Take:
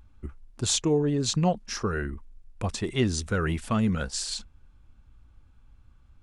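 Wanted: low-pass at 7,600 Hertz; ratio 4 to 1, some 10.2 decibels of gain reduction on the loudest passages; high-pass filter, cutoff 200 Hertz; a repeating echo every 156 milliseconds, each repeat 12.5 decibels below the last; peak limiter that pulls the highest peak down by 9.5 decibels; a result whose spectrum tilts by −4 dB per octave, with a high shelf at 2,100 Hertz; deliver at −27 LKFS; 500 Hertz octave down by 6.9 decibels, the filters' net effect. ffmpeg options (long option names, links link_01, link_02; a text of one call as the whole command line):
ffmpeg -i in.wav -af "highpass=200,lowpass=7600,equalizer=frequency=500:width_type=o:gain=-8,highshelf=frequency=2100:gain=-7,acompressor=threshold=-37dB:ratio=4,alimiter=level_in=8dB:limit=-24dB:level=0:latency=1,volume=-8dB,aecho=1:1:156|312|468:0.237|0.0569|0.0137,volume=15.5dB" out.wav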